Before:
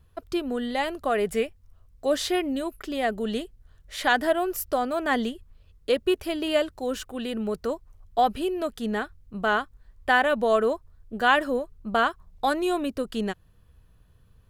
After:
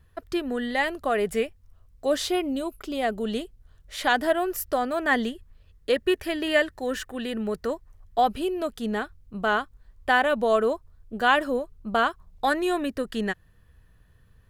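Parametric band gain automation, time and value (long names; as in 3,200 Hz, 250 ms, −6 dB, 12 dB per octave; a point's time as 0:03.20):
parametric band 1,800 Hz 0.32 octaves
+9.5 dB
from 0:00.88 +1.5 dB
from 0:02.25 −10 dB
from 0:03.02 −2 dB
from 0:04.30 +6 dB
from 0:05.96 +14.5 dB
from 0:07.15 +7.5 dB
from 0:08.18 −1 dB
from 0:12.45 +10.5 dB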